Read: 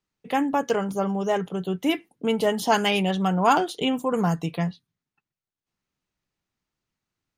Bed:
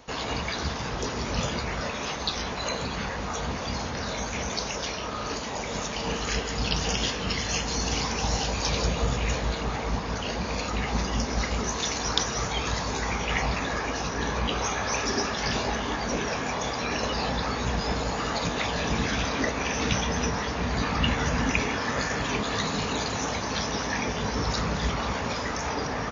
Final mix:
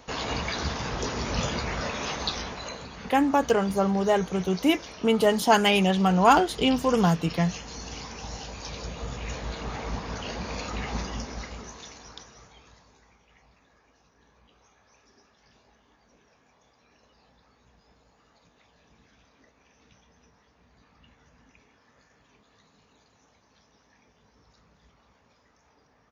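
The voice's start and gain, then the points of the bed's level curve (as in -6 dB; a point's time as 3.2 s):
2.80 s, +1.5 dB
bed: 2.25 s 0 dB
2.9 s -11 dB
8.81 s -11 dB
9.79 s -4 dB
10.96 s -4 dB
13.25 s -34 dB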